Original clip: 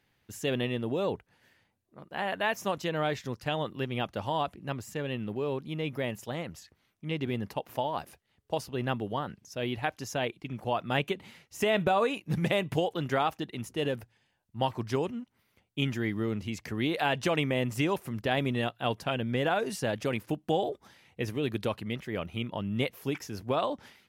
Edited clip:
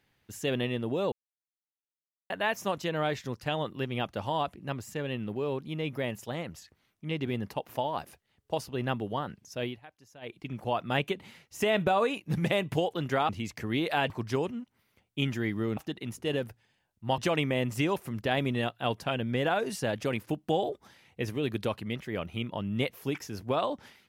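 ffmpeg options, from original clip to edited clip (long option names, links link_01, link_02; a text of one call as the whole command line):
ffmpeg -i in.wav -filter_complex "[0:a]asplit=9[link_01][link_02][link_03][link_04][link_05][link_06][link_07][link_08][link_09];[link_01]atrim=end=1.12,asetpts=PTS-STARTPTS,afade=type=out:start_time=1.116:duration=0.004:curve=hsin[link_10];[link_02]atrim=start=1.12:end=2.3,asetpts=PTS-STARTPTS,volume=0[link_11];[link_03]atrim=start=2.3:end=9.79,asetpts=PTS-STARTPTS,afade=type=in:duration=0.004:curve=hsin,afade=type=out:start_time=7.33:duration=0.16:silence=0.1[link_12];[link_04]atrim=start=9.79:end=10.21,asetpts=PTS-STARTPTS,volume=-20dB[link_13];[link_05]atrim=start=10.21:end=13.292,asetpts=PTS-STARTPTS,afade=type=in:duration=0.16:silence=0.1[link_14];[link_06]atrim=start=16.368:end=17.182[link_15];[link_07]atrim=start=14.698:end=16.372[link_16];[link_08]atrim=start=13.288:end=14.702[link_17];[link_09]atrim=start=17.178[link_18];[link_10][link_11][link_12][link_13][link_14]concat=n=5:v=0:a=1[link_19];[link_19][link_15]acrossfade=duration=0.004:curve1=hsin:curve2=hsin[link_20];[link_20][link_16]acrossfade=duration=0.004:curve1=hsin:curve2=hsin[link_21];[link_21][link_17]acrossfade=duration=0.004:curve1=hsin:curve2=hsin[link_22];[link_22][link_18]acrossfade=duration=0.004:curve1=hsin:curve2=hsin" out.wav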